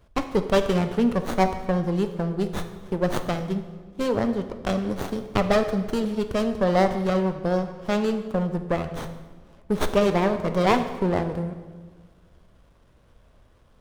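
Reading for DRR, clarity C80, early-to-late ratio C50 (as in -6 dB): 8.0 dB, 11.5 dB, 10.0 dB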